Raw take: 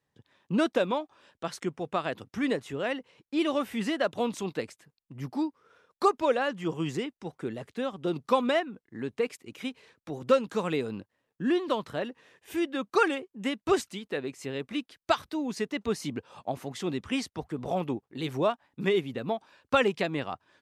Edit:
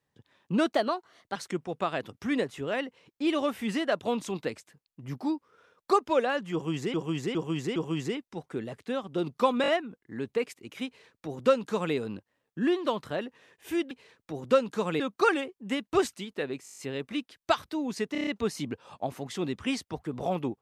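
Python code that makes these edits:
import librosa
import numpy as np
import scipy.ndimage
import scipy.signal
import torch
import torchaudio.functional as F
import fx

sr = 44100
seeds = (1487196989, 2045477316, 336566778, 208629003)

y = fx.edit(x, sr, fx.speed_span(start_s=0.72, length_s=0.76, speed=1.19),
    fx.repeat(start_s=6.65, length_s=0.41, count=4),
    fx.stutter(start_s=8.51, slice_s=0.02, count=4),
    fx.duplicate(start_s=9.69, length_s=1.09, to_s=12.74),
    fx.stutter(start_s=14.38, slice_s=0.02, count=8),
    fx.stutter(start_s=15.72, slice_s=0.03, count=6), tone=tone)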